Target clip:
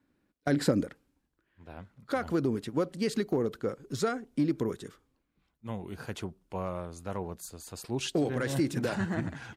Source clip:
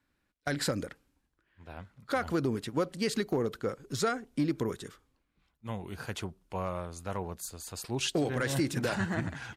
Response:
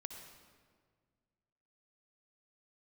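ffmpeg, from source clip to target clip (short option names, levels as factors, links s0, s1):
-af "asetnsamples=n=441:p=0,asendcmd='0.83 equalizer g 5.5',equalizer=f=280:t=o:w=2.7:g=12.5,volume=0.668"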